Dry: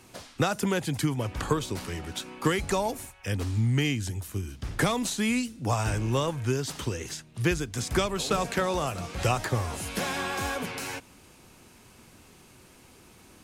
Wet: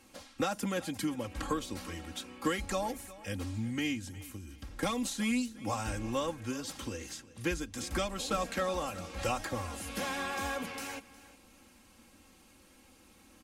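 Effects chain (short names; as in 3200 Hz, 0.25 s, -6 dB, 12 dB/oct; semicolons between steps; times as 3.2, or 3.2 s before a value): comb 3.7 ms, depth 77%; 3.99–4.83 compressor, threshold -33 dBFS, peak gain reduction 10 dB; feedback echo 0.361 s, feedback 28%, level -18.5 dB; gain -8 dB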